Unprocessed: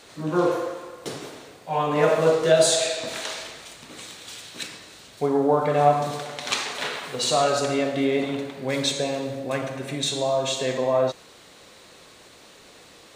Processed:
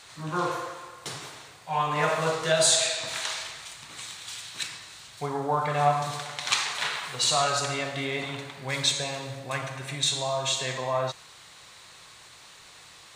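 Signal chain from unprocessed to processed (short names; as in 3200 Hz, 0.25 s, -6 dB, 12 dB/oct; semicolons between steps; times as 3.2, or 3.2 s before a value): graphic EQ 125/250/500/1000/2000/4000/8000 Hz +5/-9/-7/+5/+3/+3/+5 dB; gain -3.5 dB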